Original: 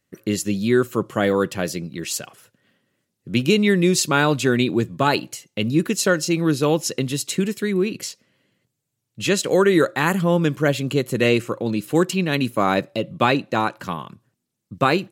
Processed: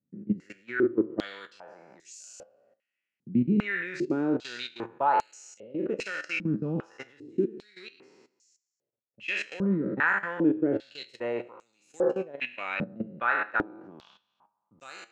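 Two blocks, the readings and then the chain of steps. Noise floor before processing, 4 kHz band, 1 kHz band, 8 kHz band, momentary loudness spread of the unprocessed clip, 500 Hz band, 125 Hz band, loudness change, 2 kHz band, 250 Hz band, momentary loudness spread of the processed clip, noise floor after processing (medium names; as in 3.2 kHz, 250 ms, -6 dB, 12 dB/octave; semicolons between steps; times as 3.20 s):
-78 dBFS, -16.5 dB, -7.5 dB, -22.5 dB, 10 LU, -11.5 dB, -14.0 dB, -8.5 dB, -6.0 dB, -9.0 dB, 21 LU, under -85 dBFS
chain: spectral sustain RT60 0.93 s; peaking EQ 3.7 kHz -7 dB 0.59 oct; band-stop 1.1 kHz, Q 7.9; level held to a coarse grid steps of 19 dB; flange 0.25 Hz, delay 7.5 ms, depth 2.8 ms, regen +77%; distance through air 99 m; step-sequenced band-pass 2.5 Hz 200–6800 Hz; trim +8 dB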